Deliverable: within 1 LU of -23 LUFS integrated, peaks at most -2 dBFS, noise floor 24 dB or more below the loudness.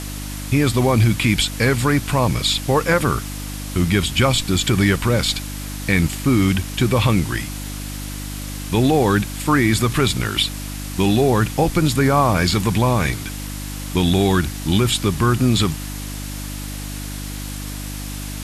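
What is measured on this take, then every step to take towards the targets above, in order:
hum 50 Hz; harmonics up to 300 Hz; hum level -27 dBFS; noise floor -29 dBFS; noise floor target -43 dBFS; loudness -18.5 LUFS; peak -4.5 dBFS; loudness target -23.0 LUFS
-> de-hum 50 Hz, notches 6; denoiser 14 dB, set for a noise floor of -29 dBFS; gain -4.5 dB

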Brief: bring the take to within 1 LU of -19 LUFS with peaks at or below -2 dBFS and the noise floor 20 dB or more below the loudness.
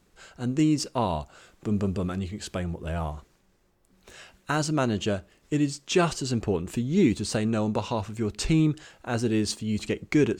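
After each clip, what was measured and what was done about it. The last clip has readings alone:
loudness -27.5 LUFS; peak -11.0 dBFS; loudness target -19.0 LUFS
-> gain +8.5 dB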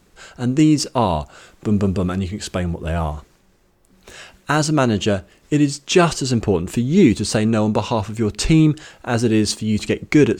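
loudness -19.0 LUFS; peak -2.5 dBFS; noise floor -57 dBFS

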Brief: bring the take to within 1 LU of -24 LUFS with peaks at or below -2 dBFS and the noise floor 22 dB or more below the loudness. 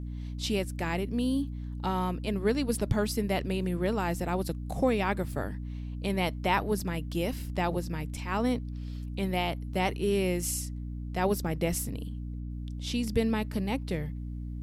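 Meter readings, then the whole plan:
dropouts 1; longest dropout 2.6 ms; hum 60 Hz; harmonics up to 300 Hz; hum level -34 dBFS; loudness -31.0 LUFS; peak -13.5 dBFS; loudness target -24.0 LUFS
-> interpolate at 6.8, 2.6 ms; notches 60/120/180/240/300 Hz; gain +7 dB

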